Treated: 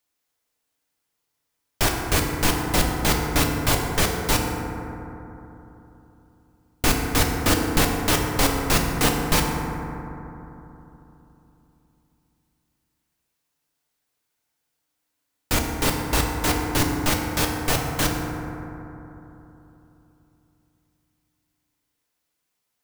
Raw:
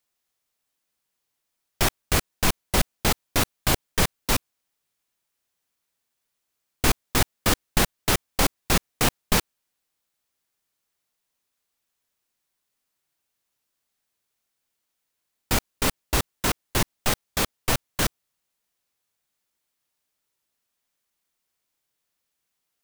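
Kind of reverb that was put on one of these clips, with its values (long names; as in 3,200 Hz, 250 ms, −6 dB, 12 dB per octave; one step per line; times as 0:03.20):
feedback delay network reverb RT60 3.3 s, low-frequency decay 1.2×, high-frequency decay 0.3×, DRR 0 dB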